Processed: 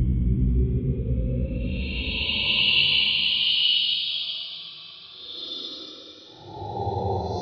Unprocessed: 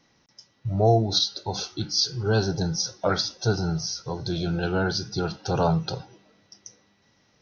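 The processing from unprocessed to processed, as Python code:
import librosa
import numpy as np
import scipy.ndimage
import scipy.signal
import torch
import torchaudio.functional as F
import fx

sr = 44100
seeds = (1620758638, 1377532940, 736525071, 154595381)

y = fx.tape_start_head(x, sr, length_s=1.56)
y = fx.doubler(y, sr, ms=48.0, db=-14)
y = fx.paulstretch(y, sr, seeds[0], factor=11.0, window_s=0.1, from_s=0.85)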